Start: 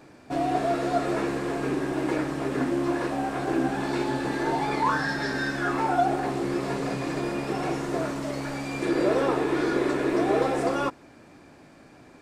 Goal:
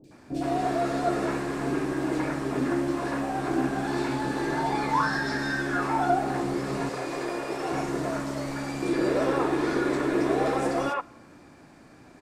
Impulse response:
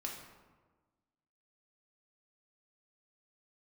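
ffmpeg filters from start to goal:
-filter_complex "[0:a]asettb=1/sr,asplit=3[s0][s1][s2];[s0]atrim=end=6.894[s3];[s1]atrim=start=6.89:end=7.72,asetpts=PTS-STARTPTS,afade=t=in:d=0.004:c=qsin,afade=t=out:st=0.826:d=0.004:c=qsin,lowshelf=f=300:t=q:w=1.5:g=-9[s4];[s2]atrim=start=7.716[s5];[s3][s4]acrossfade=d=0.004:c1=hsin:c2=qsin[s6];[s6][s5]acrossfade=d=0.004:c1=qsin:c2=hsin,acrossover=split=500|2900[s7][s8][s9];[s9]adelay=40[s10];[s8]adelay=110[s11];[s7][s11][s10]amix=inputs=3:normalize=0,asplit=2[s12][s13];[1:a]atrim=start_sample=2205[s14];[s13][s14]afir=irnorm=-1:irlink=0,volume=0.119[s15];[s12][s15]amix=inputs=2:normalize=0"

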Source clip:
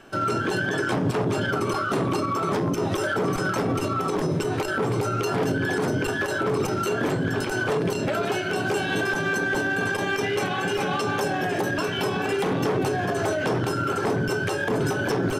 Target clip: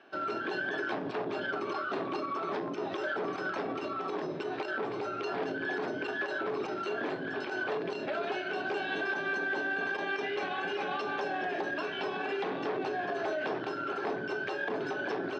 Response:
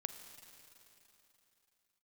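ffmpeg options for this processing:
-af "highpass=410,equalizer=f=500:t=q:w=4:g=-6,equalizer=f=940:t=q:w=4:g=-4,equalizer=f=1300:t=q:w=4:g=-5,equalizer=f=2100:t=q:w=4:g=-4,equalizer=f=3100:t=q:w=4:g=-5,lowpass=f=3900:w=0.5412,lowpass=f=3900:w=1.3066,volume=0.631"

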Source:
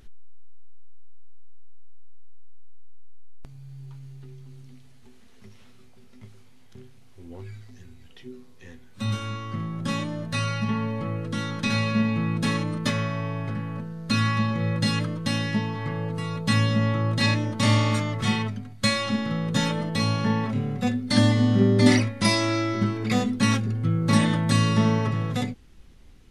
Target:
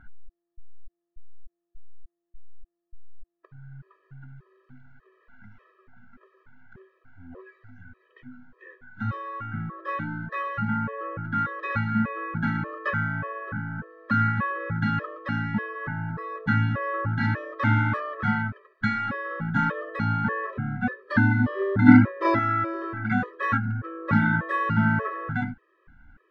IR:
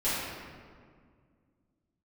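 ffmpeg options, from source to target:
-filter_complex "[0:a]lowpass=f=1500:t=q:w=12,asettb=1/sr,asplit=3[s0][s1][s2];[s0]atrim=end=21.884[s3];[s1]atrim=start=21.88:end=22.39,asetpts=PTS-STARTPTS,afade=t=in:d=0.004:c=qsin,afade=t=out:st=0.506:d=0.004:c=qsin,equalizer=f=260:w=0.45:g=10[s4];[s2]atrim=start=22.386[s5];[s3][s4]acrossfade=d=0.004:c1=hsin:c2=qsin[s6];[s6][s5]acrossfade=d=0.004:c1=qsin:c2=hsin,afftfilt=real='re*gt(sin(2*PI*1.7*pts/sr)*(1-2*mod(floor(b*sr/1024/330),2)),0)':imag='im*gt(sin(2*PI*1.7*pts/sr)*(1-2*mod(floor(b*sr/1024/330),2)),0)':win_size=1024:overlap=0.75,volume=0.841"

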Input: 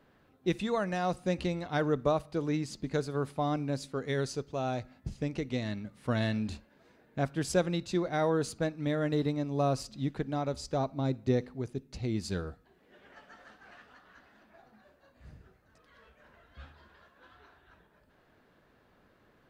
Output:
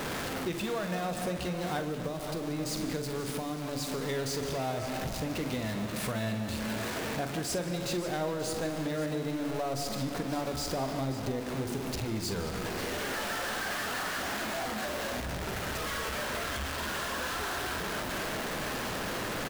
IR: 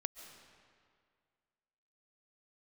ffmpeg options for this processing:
-filter_complex "[0:a]aeval=exprs='val(0)+0.5*0.0335*sgn(val(0))':c=same,bandreject=f=47.15:t=h:w=4,bandreject=f=94.3:t=h:w=4,bandreject=f=141.45:t=h:w=4,bandreject=f=188.6:t=h:w=4,bandreject=f=235.75:t=h:w=4,bandreject=f=282.9:t=h:w=4,bandreject=f=330.05:t=h:w=4,bandreject=f=377.2:t=h:w=4[s0];[1:a]atrim=start_sample=2205[s1];[s0][s1]afir=irnorm=-1:irlink=0,acompressor=threshold=0.0224:ratio=6,lowshelf=f=140:g=-3.5,asettb=1/sr,asplit=3[s2][s3][s4];[s2]atrim=end=1.794[s5];[s3]atrim=start=1.79:end=4.01,asetpts=PTS-STARTPTS,afade=t=in:d=0.004:c=qsin,afade=t=out:st=2.216:d=0.004:c=qsin,acrossover=split=390|3000[s6][s7][s8];[s7]acompressor=threshold=0.00891:ratio=6[s9];[s6][s9][s8]amix=inputs=3:normalize=0[s10];[s4]atrim=start=4.006[s11];[s5][s10]acrossfade=d=0.004:c1=hsin:c2=qsin[s12];[s12][s11]acrossfade=d=0.004:c1=qsin:c2=hsin,aecho=1:1:45|535:0.299|0.224,volume=1.41"

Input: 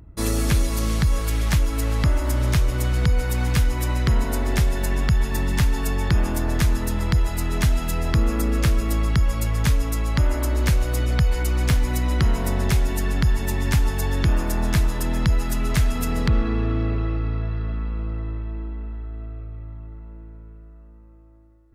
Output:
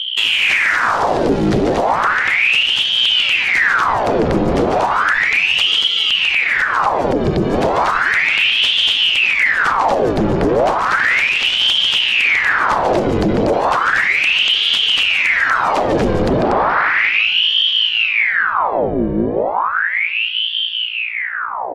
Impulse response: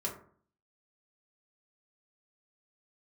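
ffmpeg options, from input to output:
-filter_complex "[0:a]equalizer=f=1900:t=o:w=1.4:g=-6,asplit=2[s0][s1];[s1]aecho=0:1:145.8|239.1:0.562|0.891[s2];[s0][s2]amix=inputs=2:normalize=0,asettb=1/sr,asplit=3[s3][s4][s5];[s3]atrim=end=5.784[s6];[s4]atrim=start=5.78:end=7.54,asetpts=PTS-STARTPTS,afade=t=in:d=0.004:c=qsin,afade=t=out:st=1.756:d=0.004:c=qsin,acrossover=split=470|1200[s7][s8][s9];[s7]acompressor=threshold=0.112:ratio=4[s10];[s8]acompressor=threshold=0.0141:ratio=4[s11];[s9]acompressor=threshold=0.0178:ratio=4[s12];[s10][s11][s12]amix=inputs=3:normalize=0[s13];[s5]atrim=start=7.536[s14];[s6][s13]acrossfade=d=0.004:c1=hsin:c2=qsin[s15];[s15][s14]acrossfade=d=0.004:c1=qsin:c2=hsin,asettb=1/sr,asplit=3[s16][s17][s18];[s16]atrim=end=10.794[s19];[s17]atrim=start=10.79:end=11.67,asetpts=PTS-STARTPTS,afade=t=in:d=0.004:c=qsin,afade=t=out:st=0.876:d=0.004:c=qsin,aeval=exprs='val(0)*gte(abs(val(0)),0.0794)':c=same[s20];[s18]atrim=start=11.666[s21];[s19][s20]acrossfade=d=0.004:c1=hsin:c2=qsin[s22];[s22][s21]acrossfade=d=0.004:c1=qsin:c2=hsin,highpass=120,lowpass=3500,lowshelf=f=260:g=8.5,bandreject=f=50:t=h:w=6,bandreject=f=100:t=h:w=6,bandreject=f=150:t=h:w=6,bandreject=f=200:t=h:w=6,bandreject=f=250:t=h:w=6,aeval=exprs='0.596*sin(PI/2*3.55*val(0)/0.596)':c=same,acompressor=threshold=0.126:ratio=4,aeval=exprs='val(0)+0.0631*(sin(2*PI*60*n/s)+sin(2*PI*2*60*n/s)/2+sin(2*PI*3*60*n/s)/3+sin(2*PI*4*60*n/s)/4+sin(2*PI*5*60*n/s)/5)':c=same,aeval=exprs='val(0)*sin(2*PI*1700*n/s+1700*0.85/0.34*sin(2*PI*0.34*n/s))':c=same,volume=1.78"

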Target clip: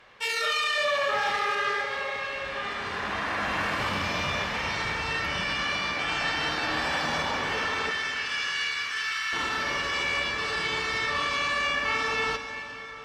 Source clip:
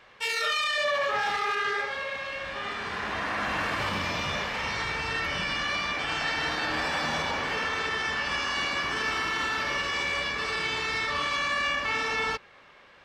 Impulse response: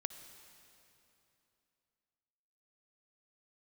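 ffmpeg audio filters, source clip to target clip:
-filter_complex "[0:a]asettb=1/sr,asplit=3[s0][s1][s2];[s0]atrim=end=7.914[s3];[s1]atrim=start=7.91:end=9.33,asetpts=PTS-STARTPTS,afade=t=in:d=0.004:c=qsin,afade=t=out:st=1.416:d=0.004:c=qsin,highpass=f=1400:w=0.5412,highpass=f=1400:w=1.3066[s4];[s2]atrim=start=9.326[s5];[s3][s4]acrossfade=d=0.004:c1=hsin:c2=qsin[s6];[s6][s5]acrossfade=d=0.004:c1=qsin:c2=hsin[s7];[1:a]atrim=start_sample=2205,asetrate=28665,aresample=44100[s8];[s7][s8]afir=irnorm=-1:irlink=0"

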